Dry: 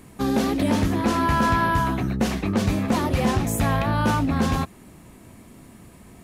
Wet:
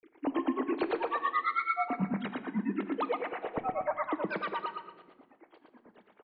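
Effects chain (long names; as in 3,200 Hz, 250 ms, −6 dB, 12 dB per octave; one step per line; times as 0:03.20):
three sine waves on the formant tracks
brickwall limiter −17.5 dBFS, peak gain reduction 10 dB
granular cloud, grains 9.1 per second, pitch spread up and down by 7 semitones
on a send: repeating echo 116 ms, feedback 34%, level −4.5 dB
on the sum: rectangular room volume 1,100 cubic metres, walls mixed, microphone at 0.49 metres
level −5 dB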